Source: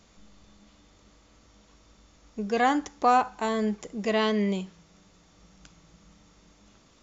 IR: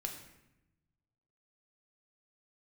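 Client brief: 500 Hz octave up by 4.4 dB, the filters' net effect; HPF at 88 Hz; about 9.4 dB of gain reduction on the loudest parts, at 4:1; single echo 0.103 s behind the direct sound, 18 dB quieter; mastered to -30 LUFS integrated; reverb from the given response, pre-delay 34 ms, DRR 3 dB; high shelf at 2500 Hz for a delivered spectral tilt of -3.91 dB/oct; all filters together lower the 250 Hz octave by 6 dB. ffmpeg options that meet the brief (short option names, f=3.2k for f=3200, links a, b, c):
-filter_complex "[0:a]highpass=88,equalizer=f=250:t=o:g=-9,equalizer=f=500:t=o:g=7.5,highshelf=f=2.5k:g=5,acompressor=threshold=-24dB:ratio=4,aecho=1:1:103:0.126,asplit=2[a][b];[1:a]atrim=start_sample=2205,adelay=34[c];[b][c]afir=irnorm=-1:irlink=0,volume=-2.5dB[d];[a][d]amix=inputs=2:normalize=0,volume=-2dB"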